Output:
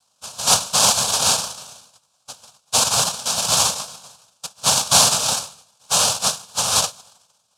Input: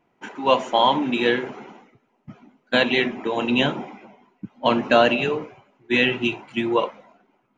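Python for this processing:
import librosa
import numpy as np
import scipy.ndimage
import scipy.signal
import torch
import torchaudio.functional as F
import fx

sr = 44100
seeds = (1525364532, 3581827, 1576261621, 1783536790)

y = fx.octave_divider(x, sr, octaves=2, level_db=1.0)
y = fx.noise_vocoder(y, sr, seeds[0], bands=1)
y = fx.fixed_phaser(y, sr, hz=820.0, stages=4)
y = y * librosa.db_to_amplitude(4.0)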